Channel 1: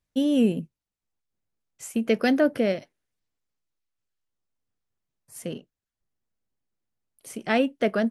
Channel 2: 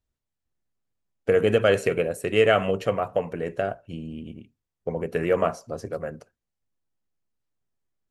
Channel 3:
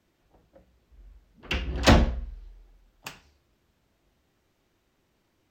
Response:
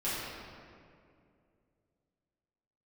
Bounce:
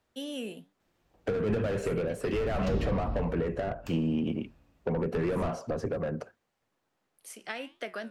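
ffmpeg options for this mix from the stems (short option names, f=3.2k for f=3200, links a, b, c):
-filter_complex "[0:a]highpass=f=1.2k:p=1,flanger=delay=9.9:depth=6.5:regen=77:speed=1.4:shape=triangular,volume=1dB[a];[1:a]asplit=2[b][c];[c]highpass=f=720:p=1,volume=31dB,asoftclip=type=tanh:threshold=-5.5dB[d];[b][d]amix=inputs=2:normalize=0,lowpass=f=1.1k:p=1,volume=-6dB,volume=-4dB[e];[2:a]adelay=800,volume=-6.5dB,asplit=2[f][g];[g]volume=-11.5dB[h];[a][f]amix=inputs=2:normalize=0,acompressor=threshold=-31dB:ratio=6,volume=0dB[i];[3:a]atrim=start_sample=2205[j];[h][j]afir=irnorm=-1:irlink=0[k];[e][i][k]amix=inputs=3:normalize=0,acrossover=split=230[l][m];[m]acompressor=threshold=-31dB:ratio=10[n];[l][n]amix=inputs=2:normalize=0"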